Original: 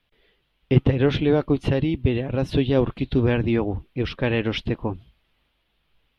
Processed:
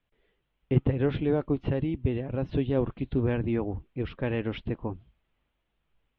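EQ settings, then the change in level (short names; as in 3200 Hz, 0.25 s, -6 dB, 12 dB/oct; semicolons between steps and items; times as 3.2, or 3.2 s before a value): air absorption 230 m; high shelf 4700 Hz -10.5 dB; -6.0 dB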